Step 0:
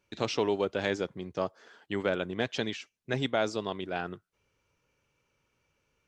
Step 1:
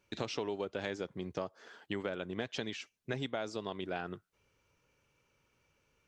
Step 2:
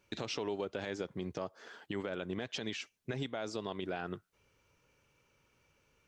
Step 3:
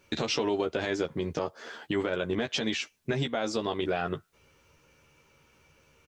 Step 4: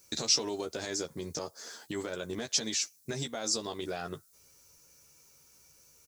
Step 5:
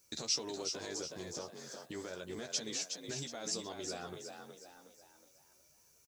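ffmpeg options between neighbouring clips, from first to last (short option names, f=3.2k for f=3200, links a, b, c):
-af "acompressor=threshold=-35dB:ratio=5,volume=1dB"
-af "alimiter=level_in=4.5dB:limit=-24dB:level=0:latency=1:release=70,volume=-4.5dB,volume=2.5dB"
-filter_complex "[0:a]asplit=2[a][b];[b]adelay=13,volume=-5dB[c];[a][c]amix=inputs=2:normalize=0,volume=8dB"
-af "aexciter=amount=9.9:drive=4.4:freq=4.4k,volume=-7.5dB"
-filter_complex "[0:a]asplit=6[a][b][c][d][e][f];[b]adelay=367,afreqshift=47,volume=-6dB[g];[c]adelay=734,afreqshift=94,volume=-13.5dB[h];[d]adelay=1101,afreqshift=141,volume=-21.1dB[i];[e]adelay=1468,afreqshift=188,volume=-28.6dB[j];[f]adelay=1835,afreqshift=235,volume=-36.1dB[k];[a][g][h][i][j][k]amix=inputs=6:normalize=0,volume=-7.5dB"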